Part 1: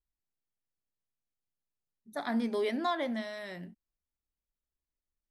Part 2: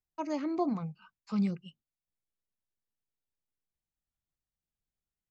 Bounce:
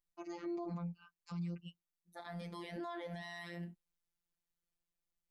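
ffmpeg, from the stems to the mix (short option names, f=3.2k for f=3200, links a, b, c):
-filter_complex "[0:a]volume=1dB[a];[1:a]dynaudnorm=f=140:g=7:m=6dB,volume=-6dB,asplit=2[b][c];[c]apad=whole_len=233793[d];[a][d]sidechaincompress=threshold=-47dB:ratio=10:attack=16:release=942[e];[e][b]amix=inputs=2:normalize=0,afftfilt=real='hypot(re,im)*cos(PI*b)':imag='0':win_size=1024:overlap=0.75,alimiter=level_in=9.5dB:limit=-24dB:level=0:latency=1:release=57,volume=-9.5dB"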